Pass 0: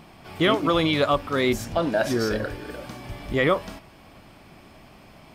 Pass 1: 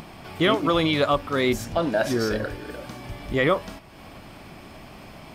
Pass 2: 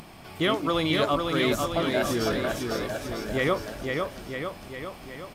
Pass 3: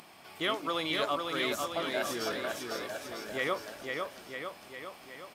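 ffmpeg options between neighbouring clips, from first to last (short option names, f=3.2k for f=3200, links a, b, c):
-af "acompressor=mode=upward:threshold=-35dB:ratio=2.5"
-filter_complex "[0:a]equalizer=f=13k:t=o:w=1.8:g=5.5,asplit=2[a][b];[b]aecho=0:1:500|950|1355|1720|2048:0.631|0.398|0.251|0.158|0.1[c];[a][c]amix=inputs=2:normalize=0,volume=-4.5dB"
-af "highpass=f=610:p=1,volume=-4dB"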